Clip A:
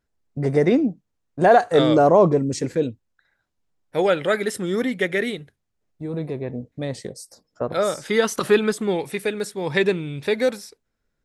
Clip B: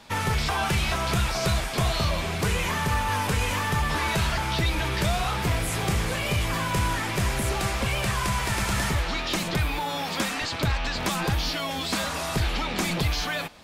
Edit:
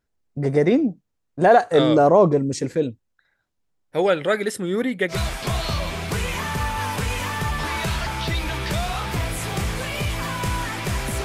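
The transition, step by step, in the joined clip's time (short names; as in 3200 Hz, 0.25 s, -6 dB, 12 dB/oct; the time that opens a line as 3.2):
clip A
4.6–5.18 bell 5600 Hz -10.5 dB 0.43 oct
5.13 switch to clip B from 1.44 s, crossfade 0.10 s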